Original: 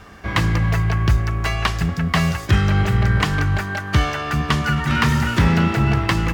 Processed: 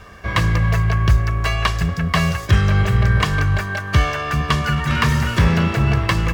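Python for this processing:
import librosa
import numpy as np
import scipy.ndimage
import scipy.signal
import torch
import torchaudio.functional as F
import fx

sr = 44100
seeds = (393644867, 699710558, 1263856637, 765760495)

y = x + 0.41 * np.pad(x, (int(1.8 * sr / 1000.0), 0))[:len(x)]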